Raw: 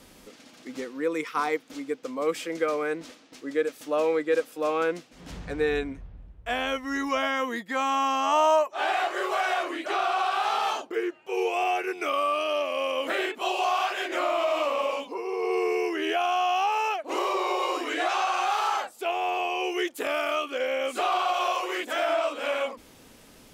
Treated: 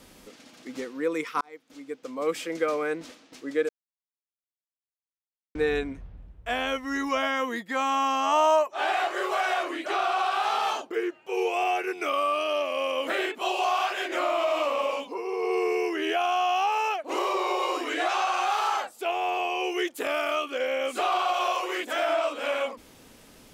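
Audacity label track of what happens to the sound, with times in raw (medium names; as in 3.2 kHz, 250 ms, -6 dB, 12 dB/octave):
1.410000	2.350000	fade in
3.690000	5.550000	mute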